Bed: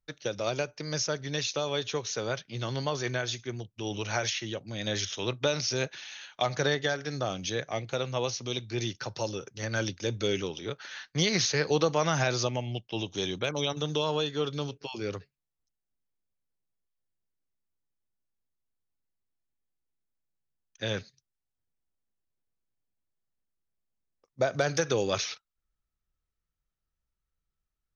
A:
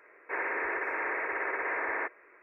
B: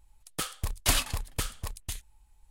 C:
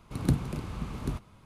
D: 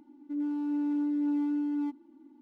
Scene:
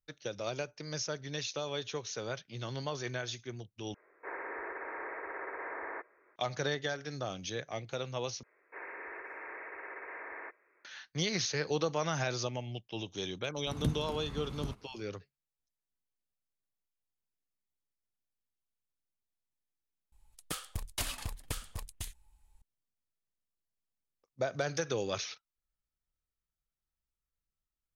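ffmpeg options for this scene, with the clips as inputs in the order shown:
-filter_complex "[1:a]asplit=2[s0][s1];[0:a]volume=0.473[s2];[s0]lowpass=1600[s3];[2:a]acompressor=threshold=0.0224:ratio=10:attack=59:release=107:knee=6:detection=peak[s4];[s2]asplit=4[s5][s6][s7][s8];[s5]atrim=end=3.944[s9];[s3]atrim=end=2.42,asetpts=PTS-STARTPTS,volume=0.473[s10];[s6]atrim=start=6.356:end=8.434[s11];[s1]atrim=end=2.42,asetpts=PTS-STARTPTS,volume=0.237[s12];[s7]atrim=start=10.846:end=20.124[s13];[s4]atrim=end=2.5,asetpts=PTS-STARTPTS,volume=0.596[s14];[s8]atrim=start=22.616[s15];[3:a]atrim=end=1.45,asetpts=PTS-STARTPTS,volume=0.447,afade=t=in:d=0.004:c=hsin,afade=t=out:st=1.446:d=0.004:c=hsin,adelay=13560[s16];[s9][s10]acrossfade=d=0.004:c1=hsin:c2=hsin[s17];[s17][s11]acrossfade=d=0.004:c1=hsin:c2=hsin[s18];[s18][s12]acrossfade=d=0.004:c1=hsin:c2=hsin[s19];[s19][s13]acrossfade=d=0.004:c1=hsin:c2=hsin[s20];[s20][s14]acrossfade=d=0.004:c1=hsin:c2=hsin[s21];[s21][s15]acrossfade=d=0.004:c1=hsin:c2=hsin[s22];[s22][s16]amix=inputs=2:normalize=0"

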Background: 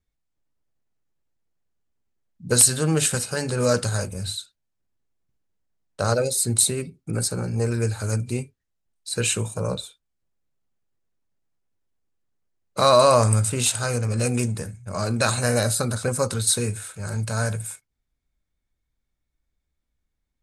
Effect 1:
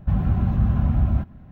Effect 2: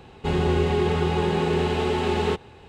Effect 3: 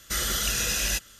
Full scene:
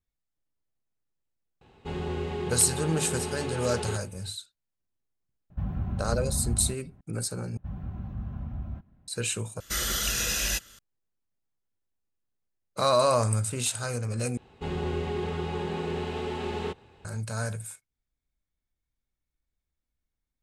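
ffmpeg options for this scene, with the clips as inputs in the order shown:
-filter_complex "[2:a]asplit=2[s0][s1];[1:a]asplit=2[s2][s3];[0:a]volume=0.447[s4];[s0]asoftclip=type=hard:threshold=0.211[s5];[3:a]aresample=32000,aresample=44100[s6];[s4]asplit=4[s7][s8][s9][s10];[s7]atrim=end=7.574[s11];[s3]atrim=end=1.51,asetpts=PTS-STARTPTS,volume=0.158[s12];[s8]atrim=start=9.076:end=9.604[s13];[s6]atrim=end=1.19,asetpts=PTS-STARTPTS,volume=0.841[s14];[s9]atrim=start=10.786:end=14.374[s15];[s1]atrim=end=2.68,asetpts=PTS-STARTPTS,volume=0.355[s16];[s10]atrim=start=17.046[s17];[s5]atrim=end=2.68,asetpts=PTS-STARTPTS,volume=0.299,afade=t=in:d=0.004:c=hsin,afade=t=out:st=2.676:d=0.004:c=hsin,adelay=1610[s18];[s2]atrim=end=1.51,asetpts=PTS-STARTPTS,volume=0.299,afade=t=in:d=0.004:c=hsin,afade=t=out:st=1.506:d=0.004:c=hsin,adelay=5500[s19];[s11][s12]acrossfade=d=0.004:c1=hsin:c2=hsin[s20];[s20][s13]acrossfade=d=0.004:c1=hsin:c2=hsin[s21];[s21][s14]acrossfade=d=0.004:c1=hsin:c2=hsin[s22];[s22][s15]acrossfade=d=0.004:c1=hsin:c2=hsin[s23];[s23][s16]acrossfade=d=0.004:c1=hsin:c2=hsin[s24];[s24][s17]acrossfade=d=0.004:c1=hsin:c2=hsin[s25];[s25][s18][s19]amix=inputs=3:normalize=0"

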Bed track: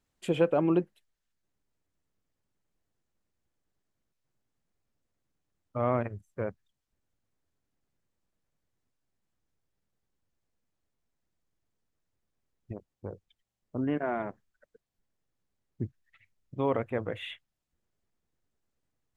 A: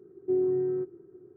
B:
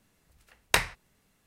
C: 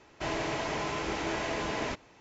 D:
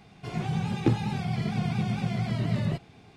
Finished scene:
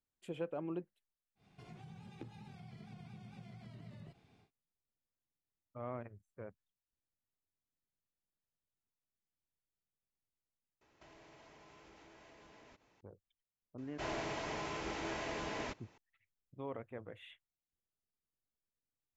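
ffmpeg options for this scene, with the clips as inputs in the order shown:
-filter_complex "[3:a]asplit=2[s0][s1];[0:a]volume=0.168[s2];[4:a]acompressor=threshold=0.00562:ratio=2.5:attack=59:release=81:knee=1:detection=peak[s3];[s0]acompressor=threshold=0.00631:ratio=6:attack=3.2:release=140:knee=1:detection=peak[s4];[s2]asplit=2[s5][s6];[s5]atrim=end=10.814[s7];[s4]atrim=end=2.2,asetpts=PTS-STARTPTS,volume=0.2[s8];[s6]atrim=start=13.006[s9];[s3]atrim=end=3.16,asetpts=PTS-STARTPTS,volume=0.178,afade=t=in:d=0.1,afade=t=out:st=3.06:d=0.1,adelay=1350[s10];[s1]atrim=end=2.2,asetpts=PTS-STARTPTS,volume=0.398,afade=t=in:d=0.004:c=hsin,afade=t=out:st=2.196:d=0.004:c=hsin,adelay=13780[s11];[s7][s8]acrossfade=d=0.004:c1=hsin:c2=hsin[s12];[s12][s9]acrossfade=d=0.004:c1=hsin:c2=hsin[s13];[s13][s10][s11]amix=inputs=3:normalize=0"

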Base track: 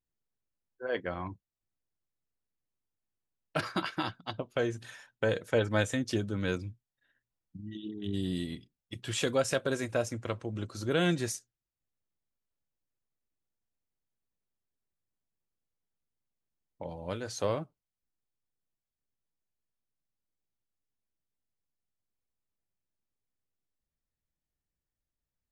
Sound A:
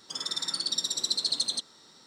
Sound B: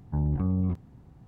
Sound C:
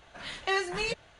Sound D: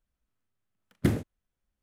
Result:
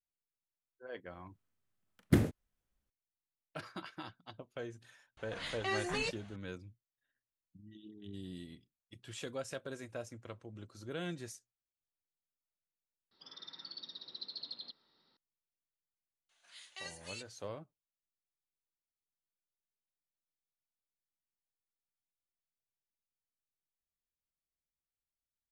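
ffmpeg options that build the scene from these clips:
-filter_complex "[3:a]asplit=2[s0][s1];[0:a]volume=0.224[s2];[s0]alimiter=limit=0.0631:level=0:latency=1:release=62[s3];[1:a]aresample=11025,aresample=44100[s4];[s1]aderivative[s5];[4:a]atrim=end=1.82,asetpts=PTS-STARTPTS,volume=0.794,afade=t=in:d=0.004:c=hsin,afade=t=out:st=1.816:d=0.004:c=hsin,adelay=1080[s6];[s3]atrim=end=1.19,asetpts=PTS-STARTPTS,volume=0.75,afade=t=in:d=0.004:c=hsin,afade=t=out:st=1.186:d=0.004:c=hsin,adelay=227997S[s7];[s4]atrim=end=2.06,asetpts=PTS-STARTPTS,volume=0.15,afade=t=in:d=0.004:c=hsin,afade=t=out:st=2.056:d=0.004:c=hsin,adelay=13110[s8];[s5]atrim=end=1.19,asetpts=PTS-STARTPTS,volume=0.447,afade=t=in:d=0.004:c=hsin,afade=t=out:st=1.186:d=0.004:c=hsin,adelay=16290[s9];[s2][s6][s7][s8][s9]amix=inputs=5:normalize=0"

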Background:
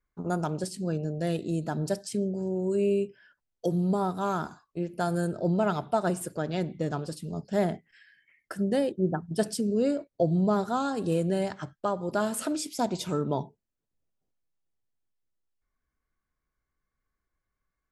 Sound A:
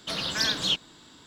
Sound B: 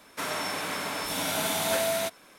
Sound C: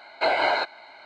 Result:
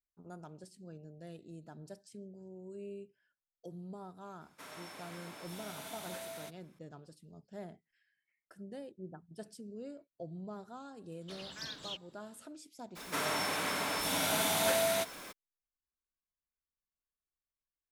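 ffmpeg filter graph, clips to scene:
-filter_complex "[2:a]asplit=2[s0][s1];[0:a]volume=0.1[s2];[s1]aeval=exprs='val(0)+0.5*0.00891*sgn(val(0))':c=same[s3];[s0]atrim=end=2.38,asetpts=PTS-STARTPTS,volume=0.126,afade=t=in:d=0.004:c=hsin,afade=t=out:st=2.376:d=0.004:c=hsin,adelay=194481S[s4];[1:a]atrim=end=1.26,asetpts=PTS-STARTPTS,volume=0.126,afade=t=in:d=0.004:c=hsin,afade=t=out:st=1.256:d=0.004:c=hsin,adelay=11210[s5];[s3]atrim=end=2.38,asetpts=PTS-STARTPTS,volume=0.668,afade=t=in:d=0.02,afade=t=out:st=2.36:d=0.02,adelay=12950[s6];[s2][s4][s5][s6]amix=inputs=4:normalize=0"

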